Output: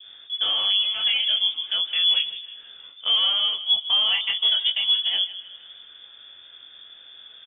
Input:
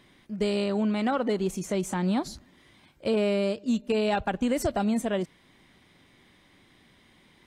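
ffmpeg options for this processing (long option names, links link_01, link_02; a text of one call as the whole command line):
ffmpeg -i in.wav -filter_complex "[0:a]adynamicequalizer=threshold=0.00447:dfrequency=2100:dqfactor=0.76:tfrequency=2100:tqfactor=0.76:attack=5:release=100:ratio=0.375:range=3:mode=cutabove:tftype=bell,acrossover=split=280[link_01][link_02];[link_01]acompressor=mode=upward:threshold=-37dB:ratio=2.5[link_03];[link_03][link_02]amix=inputs=2:normalize=0,flanger=delay=20:depth=3.1:speed=1.3,asplit=2[link_04][link_05];[link_05]adelay=158,lowpass=frequency=2500:poles=1,volume=-14dB,asplit=2[link_06][link_07];[link_07]adelay=158,lowpass=frequency=2500:poles=1,volume=0.49,asplit=2[link_08][link_09];[link_09]adelay=158,lowpass=frequency=2500:poles=1,volume=0.49,asplit=2[link_10][link_11];[link_11]adelay=158,lowpass=frequency=2500:poles=1,volume=0.49,asplit=2[link_12][link_13];[link_13]adelay=158,lowpass=frequency=2500:poles=1,volume=0.49[link_14];[link_06][link_08][link_10][link_12][link_14]amix=inputs=5:normalize=0[link_15];[link_04][link_15]amix=inputs=2:normalize=0,lowpass=frequency=3100:width_type=q:width=0.5098,lowpass=frequency=3100:width_type=q:width=0.6013,lowpass=frequency=3100:width_type=q:width=0.9,lowpass=frequency=3100:width_type=q:width=2.563,afreqshift=-3600,volume=7dB" out.wav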